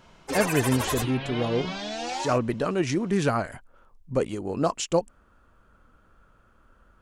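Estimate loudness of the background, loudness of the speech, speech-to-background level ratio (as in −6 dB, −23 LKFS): −31.0 LKFS, −27.0 LKFS, 4.0 dB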